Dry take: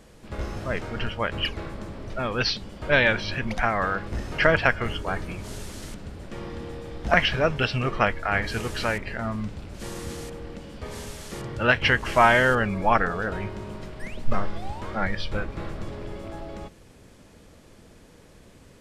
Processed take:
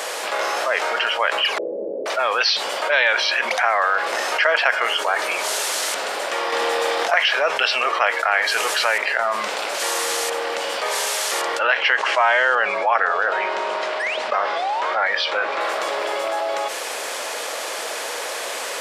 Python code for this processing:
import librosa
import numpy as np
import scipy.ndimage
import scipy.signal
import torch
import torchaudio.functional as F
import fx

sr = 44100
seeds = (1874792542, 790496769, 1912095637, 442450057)

y = fx.ellip_lowpass(x, sr, hz=500.0, order=4, stop_db=60, at=(1.58, 2.06))
y = fx.env_flatten(y, sr, amount_pct=100, at=(6.52, 7.12))
y = fx.air_absorb(y, sr, metres=99.0, at=(11.59, 15.61))
y = scipy.signal.sosfilt(scipy.signal.butter(4, 580.0, 'highpass', fs=sr, output='sos'), y)
y = fx.env_flatten(y, sr, amount_pct=70)